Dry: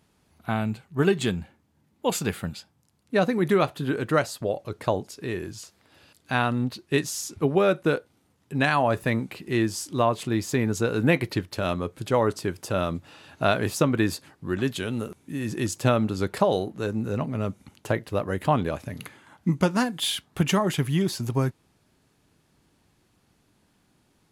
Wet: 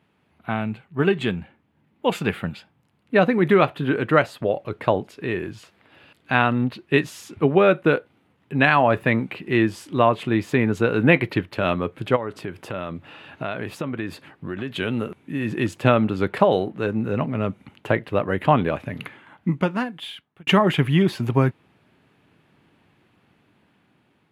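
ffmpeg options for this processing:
ffmpeg -i in.wav -filter_complex "[0:a]asplit=3[link_01][link_02][link_03];[link_01]afade=type=out:start_time=12.15:duration=0.02[link_04];[link_02]acompressor=threshold=-31dB:ratio=4:attack=3.2:release=140:knee=1:detection=peak,afade=type=in:start_time=12.15:duration=0.02,afade=type=out:start_time=14.75:duration=0.02[link_05];[link_03]afade=type=in:start_time=14.75:duration=0.02[link_06];[link_04][link_05][link_06]amix=inputs=3:normalize=0,asplit=2[link_07][link_08];[link_07]atrim=end=20.47,asetpts=PTS-STARTPTS,afade=type=out:start_time=18.96:duration=1.51[link_09];[link_08]atrim=start=20.47,asetpts=PTS-STARTPTS,afade=type=in:duration=0.004:curve=hsin[link_10];[link_09][link_10]concat=n=2:v=0:a=1,highpass=100,highshelf=frequency=4000:width_type=q:width=1.5:gain=-13,dynaudnorm=framelen=780:gausssize=5:maxgain=6dB,volume=1dB" out.wav

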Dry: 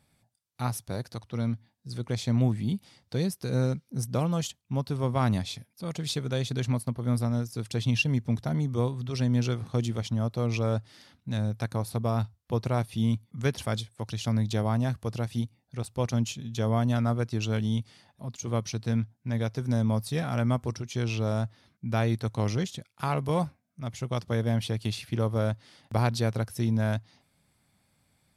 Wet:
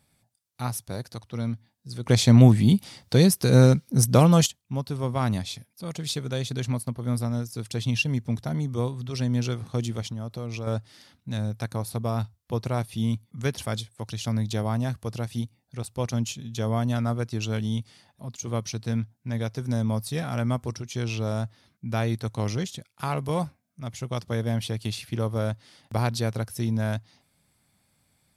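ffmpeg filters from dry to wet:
ffmpeg -i in.wav -filter_complex "[0:a]asettb=1/sr,asplit=3[link_01][link_02][link_03];[link_01]atrim=end=10.034[link_04];[link_02]atrim=start=10.03:end=10.67,asetpts=PTS-STARTPTS,afade=type=in:duration=0.004:curve=qsin,afade=type=out:start_time=0.636:duration=0.004:curve=qsin,acompressor=threshold=-30dB:ratio=4:attack=3.2:release=140:knee=1:detection=peak[link_05];[link_03]atrim=start=10.666[link_06];[link_04][link_05]acrossfade=duration=0.004:curve1=hsin:curve2=qsin[link_07];[link_07][link_06]acrossfade=duration=0.004:curve1=qsin:curve2=hsin,asplit=3[link_08][link_09][link_10];[link_08]atrim=end=2.062[link_11];[link_09]atrim=start=2.058:end=4.462,asetpts=PTS-STARTPTS,volume=10.5dB[link_12];[link_10]atrim=start=4.458[link_13];[link_11][link_12]acrossfade=duration=0.004:curve1=hsin:curve2=hsin[link_14];[link_14][link_13]acrossfade=duration=0.004:curve1=hsin:curve2=hsin,highshelf=frequency=5200:gain=5" out.wav

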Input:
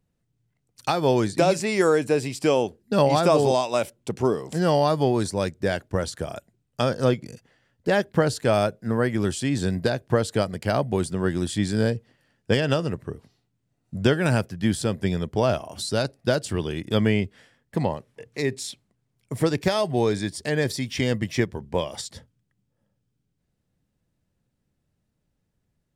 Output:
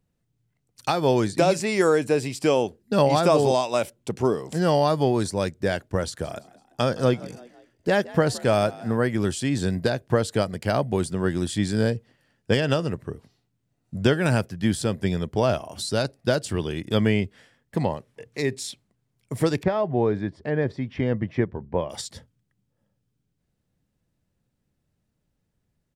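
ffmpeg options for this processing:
ffmpeg -i in.wav -filter_complex "[0:a]asplit=3[link_01][link_02][link_03];[link_01]afade=type=out:start_time=6.23:duration=0.02[link_04];[link_02]asplit=4[link_05][link_06][link_07][link_08];[link_06]adelay=168,afreqshift=58,volume=-20dB[link_09];[link_07]adelay=336,afreqshift=116,volume=-26.7dB[link_10];[link_08]adelay=504,afreqshift=174,volume=-33.5dB[link_11];[link_05][link_09][link_10][link_11]amix=inputs=4:normalize=0,afade=type=in:start_time=6.23:duration=0.02,afade=type=out:start_time=8.95:duration=0.02[link_12];[link_03]afade=type=in:start_time=8.95:duration=0.02[link_13];[link_04][link_12][link_13]amix=inputs=3:normalize=0,asettb=1/sr,asplit=3[link_14][link_15][link_16];[link_14]atrim=end=19.634[link_17];[link_15]atrim=start=19.63:end=21.9,asetpts=PTS-STARTPTS,afade=type=in:duration=0.004:curve=qsin,afade=type=out:start_time=2.266:duration=0.004:curve=qsin,lowpass=1500[link_18];[link_16]atrim=start=21.896[link_19];[link_17][link_18]acrossfade=duration=0.004:curve1=hsin:curve2=qsin[link_20];[link_20][link_19]acrossfade=duration=0.004:curve1=qsin:curve2=hsin" out.wav

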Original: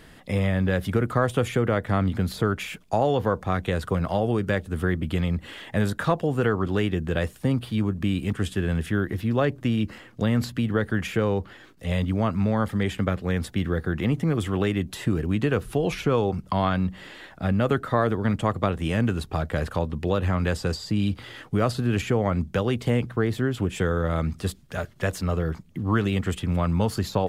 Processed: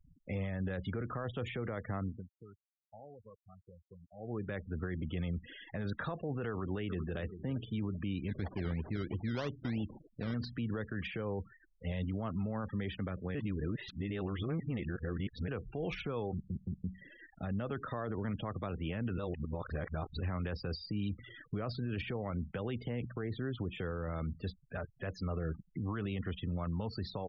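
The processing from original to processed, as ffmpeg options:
ffmpeg -i in.wav -filter_complex "[0:a]asplit=2[link_01][link_02];[link_02]afade=type=in:start_time=6.5:duration=0.01,afade=type=out:start_time=7.18:duration=0.01,aecho=0:1:390|780|1170|1560:0.188365|0.075346|0.0301384|0.0120554[link_03];[link_01][link_03]amix=inputs=2:normalize=0,asettb=1/sr,asplit=3[link_04][link_05][link_06];[link_04]atrim=end=8.284[link_07];[link_05]atrim=start=8.28:end=10.34,asetpts=PTS-STARTPTS,afade=type=in:duration=0.004:curve=qsin,afade=type=out:start_time=2.056:duration=0.004:curve=qsin,acrusher=samples=20:mix=1:aa=0.000001:lfo=1:lforange=12:lforate=3.1[link_08];[link_06]atrim=start=10.336[link_09];[link_07][link_08]acrossfade=duration=0.004:curve1=hsin:curve2=qsin[link_10];[link_10][link_09]acrossfade=duration=0.004:curve1=qsin:curve2=hsin,asplit=10[link_11][link_12][link_13][link_14][link_15][link_16][link_17][link_18][link_19][link_20];[link_11]atrim=end=2.27,asetpts=PTS-STARTPTS,afade=type=out:start_time=1.84:duration=0.43:silence=0.0794328[link_21];[link_12]atrim=start=2.27:end=4.16,asetpts=PTS-STARTPTS,volume=-22dB[link_22];[link_13]atrim=start=4.16:end=13.352,asetpts=PTS-STARTPTS,afade=type=in:duration=0.43:silence=0.0794328[link_23];[link_14]atrim=start=13.348:end=15.482,asetpts=PTS-STARTPTS,areverse[link_24];[link_15]atrim=start=15.478:end=16.502[link_25];[link_16]atrim=start=16.328:end=16.502[link_26];[link_17]atrim=start=16.328:end=16.502[link_27];[link_18]atrim=start=16.838:end=19.182[link_28];[link_19]atrim=start=19.178:end=20.202,asetpts=PTS-STARTPTS,areverse[link_29];[link_20]atrim=start=20.198[link_30];[link_21][link_22][link_23]concat=n=3:v=0:a=1[link_31];[link_31][link_24]acrossfade=duration=0.004:curve1=hsin:curve2=hsin[link_32];[link_32][link_25]acrossfade=duration=0.004:curve1=hsin:curve2=hsin[link_33];[link_33][link_26]acrossfade=duration=0.004:curve1=hsin:curve2=hsin[link_34];[link_34][link_27]acrossfade=duration=0.004:curve1=hsin:curve2=hsin[link_35];[link_35][link_28]acrossfade=duration=0.004:curve1=hsin:curve2=hsin[link_36];[link_36][link_29]acrossfade=duration=0.004:curve1=hsin:curve2=hsin[link_37];[link_37][link_30]acrossfade=duration=0.004:curve1=hsin:curve2=hsin,lowpass=frequency=5800:width=0.5412,lowpass=frequency=5800:width=1.3066,afftfilt=real='re*gte(hypot(re,im),0.02)':imag='im*gte(hypot(re,im),0.02)':win_size=1024:overlap=0.75,alimiter=limit=-20.5dB:level=0:latency=1:release=39,volume=-8dB" out.wav

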